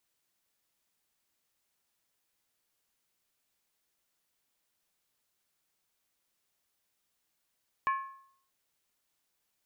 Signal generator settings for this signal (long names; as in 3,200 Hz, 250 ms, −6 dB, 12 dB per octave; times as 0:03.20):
struck skin, lowest mode 1,080 Hz, decay 0.63 s, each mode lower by 8 dB, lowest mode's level −24 dB